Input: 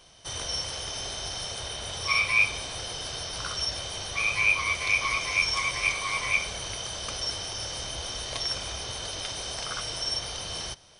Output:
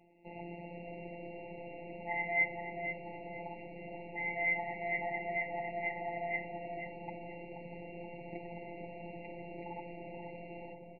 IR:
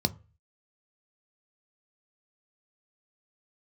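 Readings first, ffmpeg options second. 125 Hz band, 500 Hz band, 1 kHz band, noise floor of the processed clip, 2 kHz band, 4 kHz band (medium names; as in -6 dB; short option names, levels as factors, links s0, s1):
-9.0 dB, 0.0 dB, -6.0 dB, -49 dBFS, -10.0 dB, under -30 dB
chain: -filter_complex "[0:a]highpass=f=430:t=q:w=0.5412,highpass=f=430:t=q:w=1.307,lowpass=f=2200:t=q:w=0.5176,lowpass=f=2200:t=q:w=0.7071,lowpass=f=2200:t=q:w=1.932,afreqshift=-340,afftfilt=real='hypot(re,im)*cos(PI*b)':imag='0':win_size=1024:overlap=0.75,asplit=2[s0][s1];[s1]adelay=480,lowpass=f=1100:p=1,volume=0.708,asplit=2[s2][s3];[s3]adelay=480,lowpass=f=1100:p=1,volume=0.51,asplit=2[s4][s5];[s5]adelay=480,lowpass=f=1100:p=1,volume=0.51,asplit=2[s6][s7];[s7]adelay=480,lowpass=f=1100:p=1,volume=0.51,asplit=2[s8][s9];[s9]adelay=480,lowpass=f=1100:p=1,volume=0.51,asplit=2[s10][s11];[s11]adelay=480,lowpass=f=1100:p=1,volume=0.51,asplit=2[s12][s13];[s13]adelay=480,lowpass=f=1100:p=1,volume=0.51[s14];[s2][s4][s6][s8][s10][s12][s14]amix=inputs=7:normalize=0[s15];[s0][s15]amix=inputs=2:normalize=0,afftfilt=real='re*eq(mod(floor(b*sr/1024/960),2),0)':imag='im*eq(mod(floor(b*sr/1024/960),2),0)':win_size=1024:overlap=0.75,volume=1.12"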